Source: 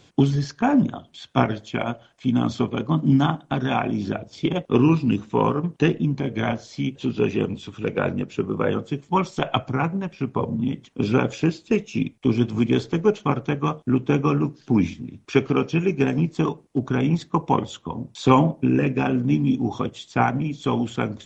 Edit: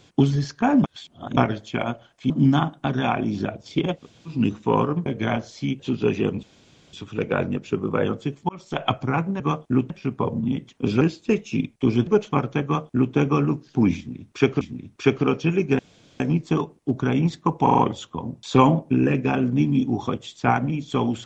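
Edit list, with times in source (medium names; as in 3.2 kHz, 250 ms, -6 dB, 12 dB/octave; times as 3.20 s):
0.84–1.37 s: reverse
2.30–2.97 s: delete
4.66–5.00 s: room tone, crossfade 0.16 s
5.73–6.22 s: delete
7.59 s: insert room tone 0.50 s
9.15–9.53 s: fade in
11.17–11.43 s: delete
12.49–13.00 s: delete
13.57–14.07 s: copy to 10.06 s
14.90–15.54 s: loop, 2 plays
16.08 s: insert room tone 0.41 s
17.51 s: stutter 0.04 s, 5 plays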